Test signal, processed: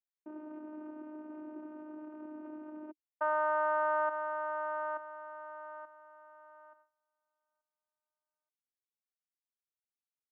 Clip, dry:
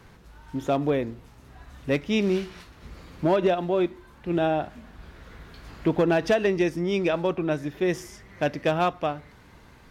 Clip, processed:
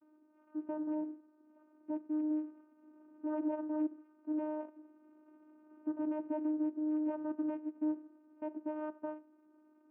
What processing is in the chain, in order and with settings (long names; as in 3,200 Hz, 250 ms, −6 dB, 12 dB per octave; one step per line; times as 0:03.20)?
running median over 25 samples
noise gate with hold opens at −49 dBFS
Butterworth low-pass 1,600 Hz 96 dB per octave
brickwall limiter −20 dBFS
channel vocoder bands 8, saw 306 Hz
level −7 dB